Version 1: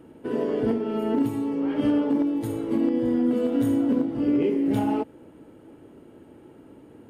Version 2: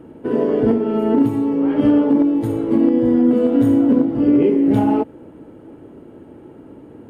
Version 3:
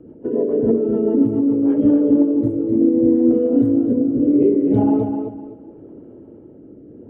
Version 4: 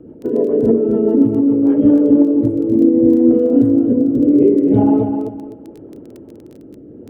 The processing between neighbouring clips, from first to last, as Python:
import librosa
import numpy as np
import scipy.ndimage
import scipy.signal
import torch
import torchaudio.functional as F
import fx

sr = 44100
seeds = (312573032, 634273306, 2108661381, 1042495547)

y1 = fx.high_shelf(x, sr, hz=2200.0, db=-10.0)
y1 = y1 * librosa.db_to_amplitude(8.5)
y2 = fx.envelope_sharpen(y1, sr, power=1.5)
y2 = fx.rotary_switch(y2, sr, hz=7.0, then_hz=0.75, switch_at_s=1.46)
y2 = fx.echo_feedback(y2, sr, ms=254, feedback_pct=27, wet_db=-6.5)
y3 = fx.dmg_crackle(y2, sr, seeds[0], per_s=12.0, level_db=-33.0)
y3 = y3 * librosa.db_to_amplitude(3.5)